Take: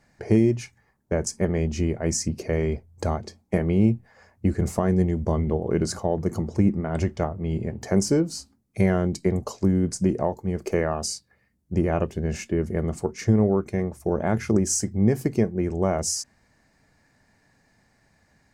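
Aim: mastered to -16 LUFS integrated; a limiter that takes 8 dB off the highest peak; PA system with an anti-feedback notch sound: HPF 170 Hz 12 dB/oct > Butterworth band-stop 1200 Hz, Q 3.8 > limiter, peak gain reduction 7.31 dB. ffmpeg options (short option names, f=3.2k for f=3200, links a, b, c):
-af "alimiter=limit=-15dB:level=0:latency=1,highpass=170,asuperstop=centerf=1200:order=8:qfactor=3.8,volume=16dB,alimiter=limit=-4.5dB:level=0:latency=1"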